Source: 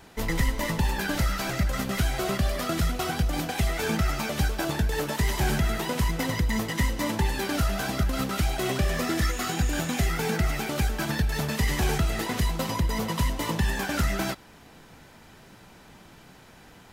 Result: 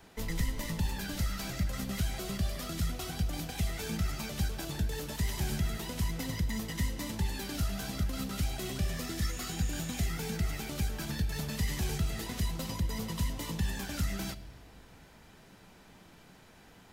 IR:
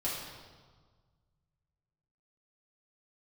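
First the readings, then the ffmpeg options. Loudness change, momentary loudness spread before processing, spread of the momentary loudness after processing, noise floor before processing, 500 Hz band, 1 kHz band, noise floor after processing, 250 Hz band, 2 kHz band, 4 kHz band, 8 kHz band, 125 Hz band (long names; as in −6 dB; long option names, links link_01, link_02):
−7.5 dB, 2 LU, 2 LU, −51 dBFS, −12.0 dB, −13.0 dB, −57 dBFS, −7.5 dB, −11.5 dB, −7.0 dB, −6.0 dB, −6.0 dB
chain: -filter_complex "[0:a]acrossover=split=230|3000[link_01][link_02][link_03];[link_02]acompressor=threshold=-38dB:ratio=3[link_04];[link_01][link_04][link_03]amix=inputs=3:normalize=0,asplit=2[link_05][link_06];[link_06]asuperstop=centerf=1100:order=4:qfactor=1.4[link_07];[1:a]atrim=start_sample=2205[link_08];[link_07][link_08]afir=irnorm=-1:irlink=0,volume=-16.5dB[link_09];[link_05][link_09]amix=inputs=2:normalize=0,volume=-6.5dB"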